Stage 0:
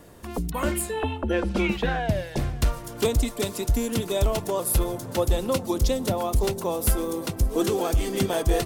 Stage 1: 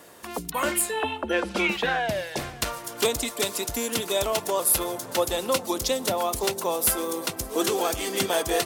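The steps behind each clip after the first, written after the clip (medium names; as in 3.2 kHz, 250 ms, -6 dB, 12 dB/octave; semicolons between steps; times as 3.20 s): high-pass 810 Hz 6 dB/octave; trim +5.5 dB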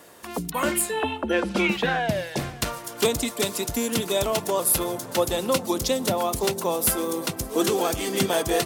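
dynamic bell 160 Hz, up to +8 dB, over -44 dBFS, Q 0.72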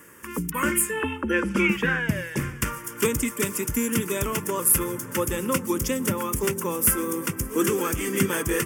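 static phaser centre 1.7 kHz, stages 4; trim +3.5 dB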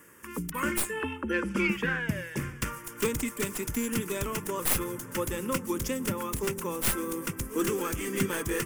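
tracing distortion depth 0.089 ms; trim -5.5 dB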